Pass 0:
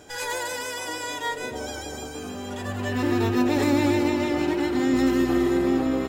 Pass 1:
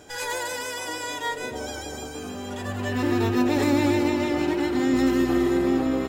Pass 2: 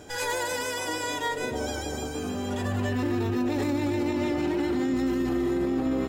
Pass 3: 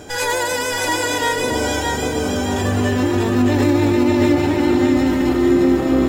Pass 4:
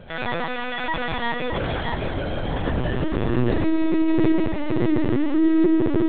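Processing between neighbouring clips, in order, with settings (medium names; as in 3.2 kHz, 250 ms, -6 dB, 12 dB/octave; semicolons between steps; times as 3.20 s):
no audible change
bass shelf 460 Hz +5 dB; peak limiter -19.5 dBFS, peak gain reduction 11.5 dB
bit-crushed delay 619 ms, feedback 35%, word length 10-bit, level -3.5 dB; trim +9 dB
filtered feedback delay 208 ms, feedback 81%, low-pass 880 Hz, level -8 dB; LPC vocoder at 8 kHz pitch kept; trim -5 dB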